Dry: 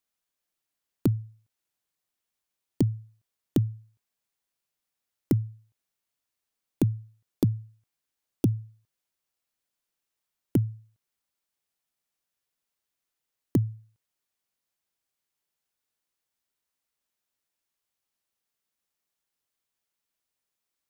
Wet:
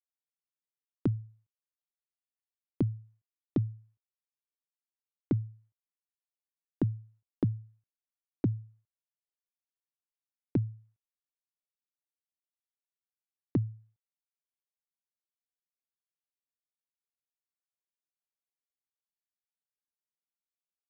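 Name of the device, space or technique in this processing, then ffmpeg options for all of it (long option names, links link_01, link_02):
hearing-loss simulation: -af "lowpass=1700,agate=range=-33dB:threshold=-53dB:ratio=3:detection=peak,volume=-5dB"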